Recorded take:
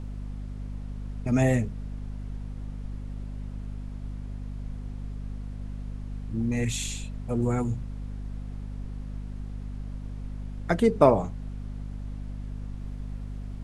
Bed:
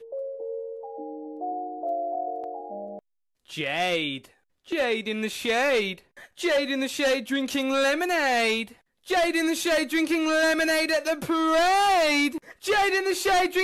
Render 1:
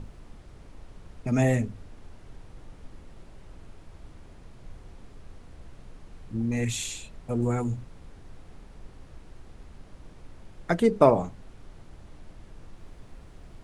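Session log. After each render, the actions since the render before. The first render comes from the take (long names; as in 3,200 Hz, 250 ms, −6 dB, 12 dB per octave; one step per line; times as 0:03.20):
mains-hum notches 50/100/150/200/250 Hz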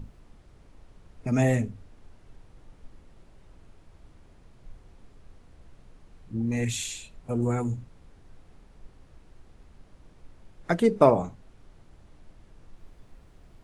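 noise reduction from a noise print 6 dB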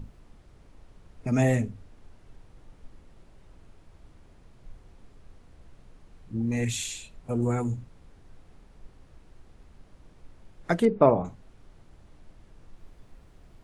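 0:10.85–0:11.25: high-frequency loss of the air 340 metres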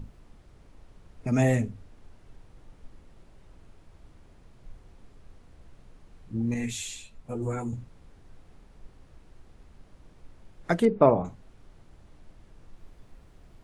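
0:06.54–0:07.73: string-ensemble chorus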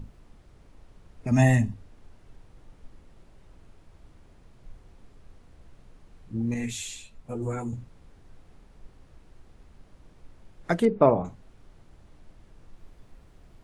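0:01.31–0:01.74: comb filter 1.1 ms, depth 97%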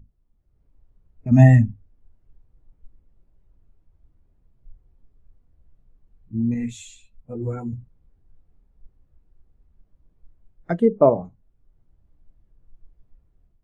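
automatic gain control gain up to 6.5 dB
every bin expanded away from the loudest bin 1.5 to 1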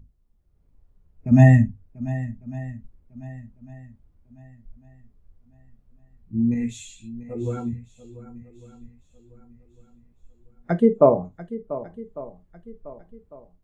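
feedback echo with a long and a short gap by turns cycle 1,150 ms, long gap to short 1.5 to 1, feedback 31%, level −15.5 dB
reverb whose tail is shaped and stops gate 90 ms falling, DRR 11.5 dB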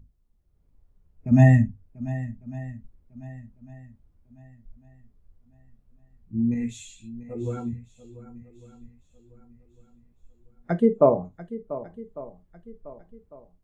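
level −2.5 dB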